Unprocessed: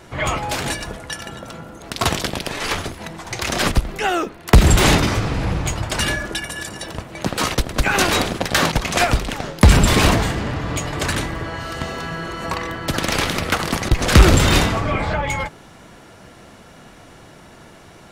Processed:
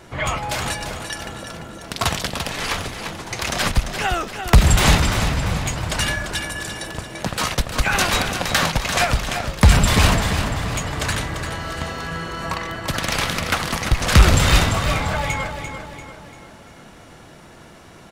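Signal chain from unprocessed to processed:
on a send: repeating echo 343 ms, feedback 45%, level −8.5 dB
on the sum: dynamic equaliser 340 Hz, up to −8 dB, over −34 dBFS, Q 1.4
level −1 dB

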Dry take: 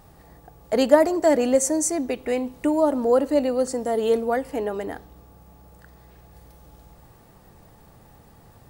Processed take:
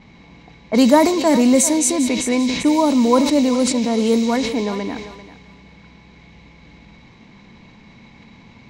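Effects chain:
noise in a band 1,800–7,000 Hz −42 dBFS
high-shelf EQ 3,200 Hz +9 dB
hollow resonant body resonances 220/1,000/2,200/3,900 Hz, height 15 dB, ringing for 35 ms
low-pass that shuts in the quiet parts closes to 740 Hz, open at −11 dBFS
on a send: feedback echo with a high-pass in the loop 393 ms, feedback 23%, high-pass 540 Hz, level −12 dB
on the sum: level that may fall only so fast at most 53 dB per second
level −1.5 dB

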